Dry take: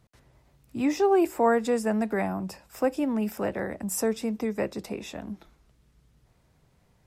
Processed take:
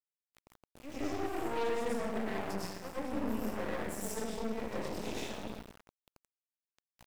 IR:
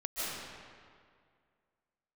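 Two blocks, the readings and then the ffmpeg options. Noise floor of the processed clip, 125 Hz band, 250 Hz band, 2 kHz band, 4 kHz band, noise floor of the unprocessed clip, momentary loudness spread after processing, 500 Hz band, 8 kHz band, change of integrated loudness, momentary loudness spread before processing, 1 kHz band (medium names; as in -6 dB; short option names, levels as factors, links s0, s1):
under -85 dBFS, -7.5 dB, -11.0 dB, -7.0 dB, -3.0 dB, -65 dBFS, 9 LU, -11.0 dB, -8.5 dB, -10.5 dB, 16 LU, -9.5 dB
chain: -filter_complex "[0:a]areverse,acompressor=threshold=0.01:ratio=4,areverse,flanger=delay=17:depth=7.3:speed=2[s0];[1:a]atrim=start_sample=2205,asetrate=66150,aresample=44100[s1];[s0][s1]afir=irnorm=-1:irlink=0,aeval=exprs='0.0422*(cos(1*acos(clip(val(0)/0.0422,-1,1)))-cos(1*PI/2))+0.00237*(cos(4*acos(clip(val(0)/0.0422,-1,1)))-cos(4*PI/2))+0.00596*(cos(8*acos(clip(val(0)/0.0422,-1,1)))-cos(8*PI/2))':c=same,aeval=exprs='val(0)*gte(abs(val(0)),0.00299)':c=same,volume=1.5"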